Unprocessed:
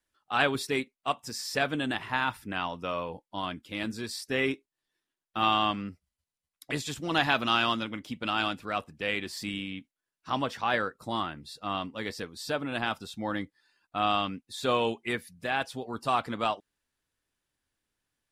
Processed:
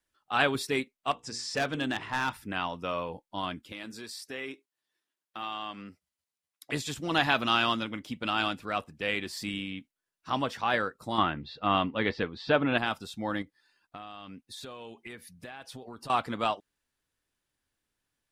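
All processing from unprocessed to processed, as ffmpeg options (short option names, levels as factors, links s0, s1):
-filter_complex "[0:a]asettb=1/sr,asplit=3[s0][s1][s2];[s0]atrim=end=1.114[s3];[s1]atrim=start=1.11:end=2.33,asetpts=PTS-STARTPTS,afade=t=in:d=0.004:c=qsin,afade=t=out:st=1.216:d=0.004:c=qsin,lowpass=f=8300:w=0.5412,lowpass=f=8300:w=1.3066,asoftclip=type=hard:threshold=0.0708,bandreject=f=60:t=h:w=6,bandreject=f=120:t=h:w=6,bandreject=f=180:t=h:w=6,bandreject=f=240:t=h:w=6,bandreject=f=300:t=h:w=6,bandreject=f=360:t=h:w=6,bandreject=f=420:t=h:w=6,bandreject=f=480:t=h:w=6[s4];[s2]atrim=start=2.326[s5];[s3][s4]acrossfade=d=0.004:c1=hsin:c2=qsin[s6];[s6][s5]acrossfade=d=0.004:c1=qsin:c2=hsin,asettb=1/sr,asplit=3[s7][s8][s9];[s7]atrim=end=3.724[s10];[s8]atrim=start=3.72:end=6.72,asetpts=PTS-STARTPTS,afade=t=in:d=0.004:c=qsin,afade=t=out:st=2.996:d=0.004:c=qsin,highpass=f=320:p=1,acompressor=threshold=0.00891:ratio=2:attack=3.2:release=140:knee=1:detection=peak[s11];[s9]atrim=start=6.716[s12];[s10][s11]acrossfade=d=0.004:c1=hsin:c2=qsin[s13];[s13][s12]acrossfade=d=0.004:c1=qsin:c2=hsin,asettb=1/sr,asplit=3[s14][s15][s16];[s14]atrim=end=11.184[s17];[s15]atrim=start=11.18:end=12.78,asetpts=PTS-STARTPTS,afade=t=in:d=0.004:c=qsin,afade=t=out:st=1.596:d=0.004:c=qsin,lowpass=f=3500:w=0.5412,lowpass=f=3500:w=1.3066,acontrast=74[s18];[s16]atrim=start=12.776[s19];[s17][s18]acrossfade=d=0.004:c1=hsin:c2=qsin[s20];[s20][s19]acrossfade=d=0.004:c1=qsin:c2=hsin,asettb=1/sr,asplit=3[s21][s22][s23];[s21]atrim=end=13.424[s24];[s22]atrim=start=13.42:end=16.1,asetpts=PTS-STARTPTS,afade=t=in:d=0.004:c=qsin,afade=t=out:st=2.676:d=0.004:c=qsin,acompressor=threshold=0.0112:ratio=16:attack=3.2:release=140:knee=1:detection=peak,bandreject=f=7400:w=17[s25];[s23]atrim=start=16.096[s26];[s24][s25]acrossfade=d=0.004:c1=hsin:c2=qsin[s27];[s27][s26]acrossfade=d=0.004:c1=qsin:c2=hsin"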